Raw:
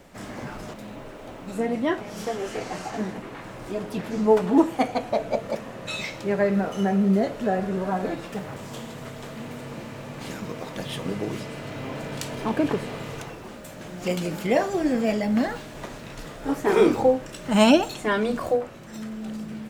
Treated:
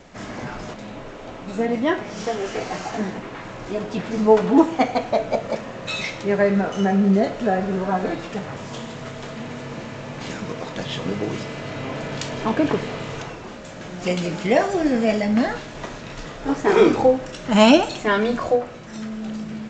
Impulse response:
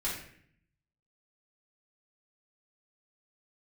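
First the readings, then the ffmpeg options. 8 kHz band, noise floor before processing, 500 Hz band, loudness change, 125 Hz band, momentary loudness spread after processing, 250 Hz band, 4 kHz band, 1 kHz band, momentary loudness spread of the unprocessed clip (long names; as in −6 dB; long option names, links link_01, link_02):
+2.0 dB, −40 dBFS, +4.0 dB, +3.5 dB, +3.5 dB, 18 LU, +3.5 dB, +4.5 dB, +4.5 dB, 18 LU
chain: -filter_complex "[0:a]asplit=2[link_01][link_02];[link_02]highpass=540[link_03];[1:a]atrim=start_sample=2205[link_04];[link_03][link_04]afir=irnorm=-1:irlink=0,volume=-13.5dB[link_05];[link_01][link_05]amix=inputs=2:normalize=0,volume=3.5dB" -ar 16000 -c:a g722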